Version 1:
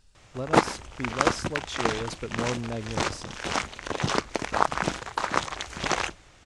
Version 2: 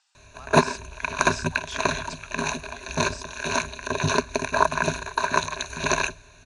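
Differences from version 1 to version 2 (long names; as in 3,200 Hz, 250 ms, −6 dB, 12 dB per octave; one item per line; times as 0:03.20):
speech: add Chebyshev band-pass filter 730–8,300 Hz, order 5
background: add EQ curve with evenly spaced ripples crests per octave 1.5, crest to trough 17 dB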